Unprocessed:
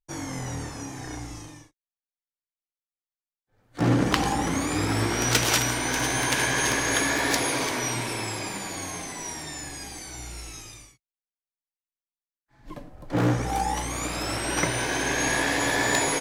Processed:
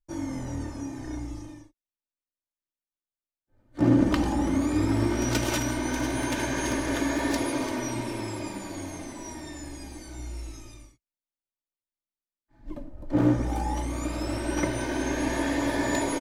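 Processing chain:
tilt shelving filter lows +6.5 dB, about 750 Hz
comb filter 3.3 ms, depth 61%
level −4.5 dB

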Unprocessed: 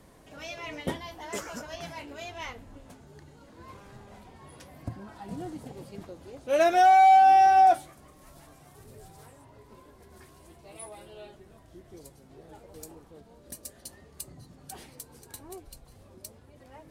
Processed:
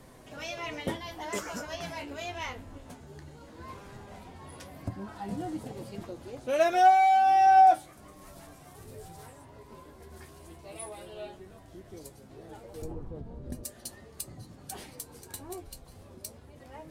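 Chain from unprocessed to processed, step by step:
0:12.82–0:13.64: spectral tilt −4 dB per octave
in parallel at +2 dB: downward compressor, threshold −36 dBFS, peak gain reduction 19 dB
on the sum: flanger 0.15 Hz, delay 7.7 ms, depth 5.3 ms, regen +56%

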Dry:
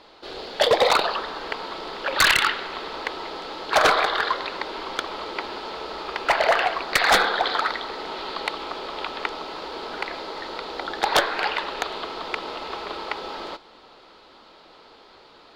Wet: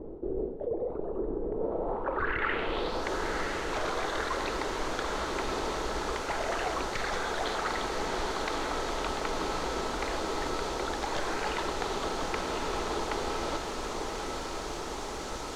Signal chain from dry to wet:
RIAA equalisation playback
brickwall limiter −14 dBFS, peak gain reduction 10 dB
reversed playback
downward compressor 10 to 1, threshold −36 dBFS, peak gain reduction 17.5 dB
reversed playback
background noise blue −52 dBFS
low-pass filter sweep 400 Hz → 6,200 Hz, 0:01.52–0:03.09
on a send: feedback delay with all-pass diffusion 1,044 ms, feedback 72%, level −5 dB
on the sum: level +5 dB

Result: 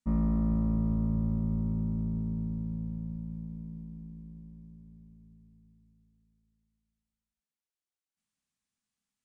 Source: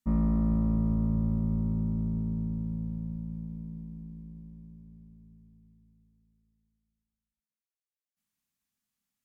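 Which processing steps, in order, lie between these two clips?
downsampling to 22,050 Hz
level −1.5 dB

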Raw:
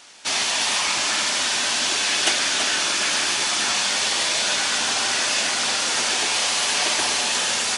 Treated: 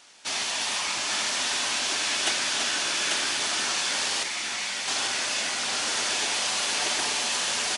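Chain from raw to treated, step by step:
0:04.23–0:04.88: four-pole ladder high-pass 1,900 Hz, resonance 70%
single-tap delay 841 ms −4 dB
level −6.5 dB

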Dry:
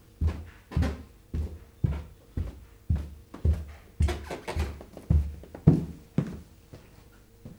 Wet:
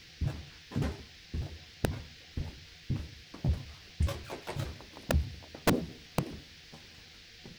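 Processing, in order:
pitch shifter gated in a rhythm +8 semitones, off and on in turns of 83 ms
noise in a band 1,600–5,400 Hz −50 dBFS
wrap-around overflow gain 13 dB
level −4.5 dB

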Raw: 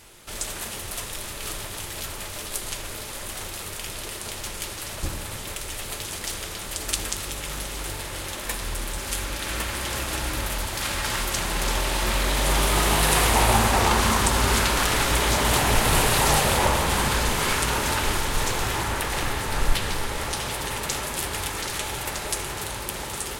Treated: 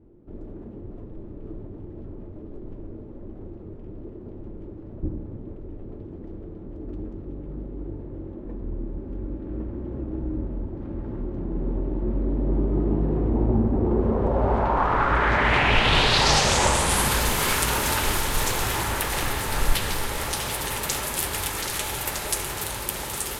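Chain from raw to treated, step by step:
low-pass filter sweep 310 Hz → 14,000 Hz, 0:13.79–0:17.22

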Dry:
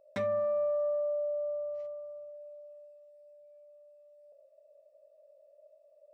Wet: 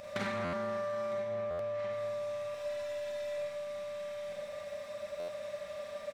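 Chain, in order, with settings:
compressor on every frequency bin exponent 0.4
parametric band 400 Hz −14.5 dB 1.7 octaves
single-tap delay 955 ms −15 dB
downward compressor, threshold −41 dBFS, peak gain reduction 7 dB
0:01.12–0:01.91: low-pass filter 1,900 Hz → 2,800 Hz 6 dB per octave
0:02.54–0:03.38: comb filter 3 ms, depth 84%
four-comb reverb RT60 0.92 s, combs from 32 ms, DRR −3 dB
buffer that repeats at 0:00.44/0:01.50/0:05.19, samples 512, times 7
highs frequency-modulated by the lows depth 0.32 ms
level +6 dB

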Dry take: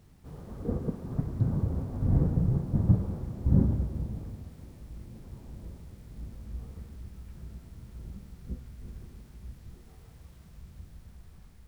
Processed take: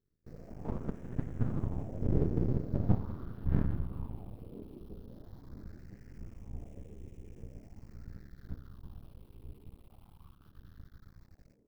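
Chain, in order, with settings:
noise gate with hold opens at −42 dBFS
all-pass phaser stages 6, 0.18 Hz, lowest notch 460–1,200 Hz
half-wave rectification
on a send: delay with a band-pass on its return 1,004 ms, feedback 67%, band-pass 400 Hz, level −15.5 dB
on the sum: auto-filter bell 0.42 Hz 390–1,700 Hz +10 dB
level −2 dB

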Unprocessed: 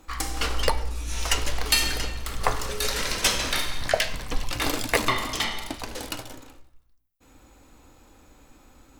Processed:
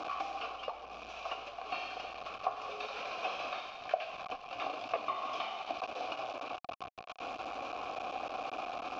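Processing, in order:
linear delta modulator 32 kbit/s, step −26.5 dBFS
downward compressor 6 to 1, threshold −28 dBFS, peak gain reduction 12.5 dB
formant filter a
level +7 dB

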